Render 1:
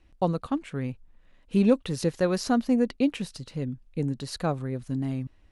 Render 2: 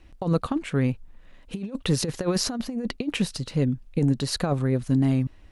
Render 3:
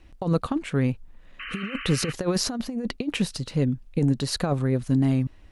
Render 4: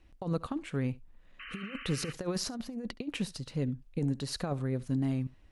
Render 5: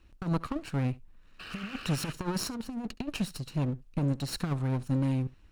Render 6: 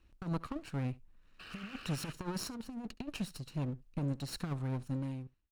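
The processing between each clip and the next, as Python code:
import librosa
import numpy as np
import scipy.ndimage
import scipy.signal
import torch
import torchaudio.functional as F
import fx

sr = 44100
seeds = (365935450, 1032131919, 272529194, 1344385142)

y1 = fx.over_compress(x, sr, threshold_db=-27.0, ratio=-0.5)
y1 = F.gain(torch.from_numpy(y1), 5.0).numpy()
y2 = fx.spec_paint(y1, sr, seeds[0], shape='noise', start_s=1.39, length_s=0.74, low_hz=1100.0, high_hz=3100.0, level_db=-37.0)
y3 = y2 + 10.0 ** (-22.0 / 20.0) * np.pad(y2, (int(70 * sr / 1000.0), 0))[:len(y2)]
y3 = F.gain(torch.from_numpy(y3), -9.0).numpy()
y4 = fx.lower_of_two(y3, sr, delay_ms=0.72)
y4 = F.gain(torch.from_numpy(y4), 2.5).numpy()
y5 = fx.fade_out_tail(y4, sr, length_s=0.71)
y5 = F.gain(torch.from_numpy(y5), -6.5).numpy()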